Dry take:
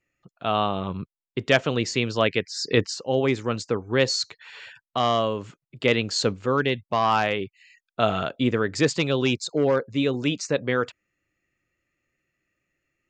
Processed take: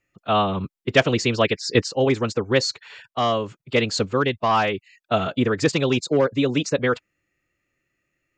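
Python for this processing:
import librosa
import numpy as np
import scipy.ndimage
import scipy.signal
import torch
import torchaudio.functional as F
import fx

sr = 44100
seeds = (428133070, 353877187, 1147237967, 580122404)

y = fx.rider(x, sr, range_db=5, speed_s=2.0)
y = fx.stretch_vocoder(y, sr, factor=0.64)
y = y * 10.0 ** (3.5 / 20.0)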